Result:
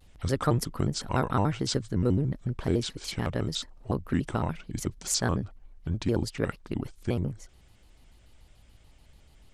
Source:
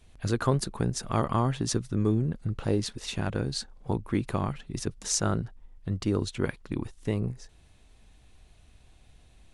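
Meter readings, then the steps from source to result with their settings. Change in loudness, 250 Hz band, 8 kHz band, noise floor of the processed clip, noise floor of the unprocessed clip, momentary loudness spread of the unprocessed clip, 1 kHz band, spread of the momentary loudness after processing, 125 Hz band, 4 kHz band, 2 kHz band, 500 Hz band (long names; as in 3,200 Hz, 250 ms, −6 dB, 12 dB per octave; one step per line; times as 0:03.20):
0.0 dB, 0.0 dB, −1.0 dB, −57 dBFS, −57 dBFS, 9 LU, 0.0 dB, 8 LU, 0.0 dB, +1.5 dB, +1.0 dB, 0.0 dB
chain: pitch modulation by a square or saw wave square 6.9 Hz, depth 250 cents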